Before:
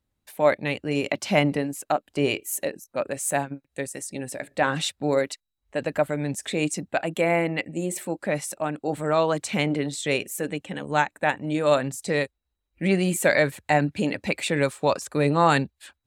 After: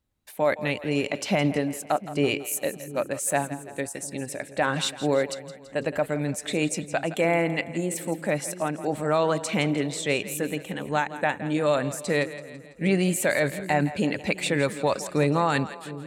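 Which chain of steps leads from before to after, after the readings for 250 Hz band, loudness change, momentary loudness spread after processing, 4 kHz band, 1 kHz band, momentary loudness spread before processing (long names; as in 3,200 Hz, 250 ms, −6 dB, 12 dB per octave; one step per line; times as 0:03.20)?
0.0 dB, −1.0 dB, 9 LU, −0.5 dB, −2.5 dB, 10 LU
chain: brickwall limiter −12.5 dBFS, peak gain reduction 6.5 dB
on a send: echo with a time of its own for lows and highs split 430 Hz, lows 706 ms, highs 166 ms, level −14 dB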